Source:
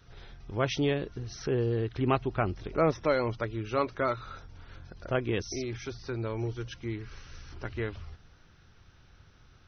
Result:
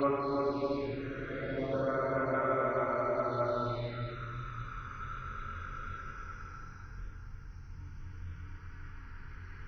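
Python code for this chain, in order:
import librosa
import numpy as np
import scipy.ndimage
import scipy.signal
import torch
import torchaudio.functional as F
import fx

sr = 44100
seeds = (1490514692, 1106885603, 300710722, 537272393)

y = fx.paulstretch(x, sr, seeds[0], factor=11.0, window_s=0.25, from_s=3.82)
y = fx.env_phaser(y, sr, low_hz=520.0, high_hz=4300.0, full_db=-24.0)
y = fx.rider(y, sr, range_db=3, speed_s=0.5)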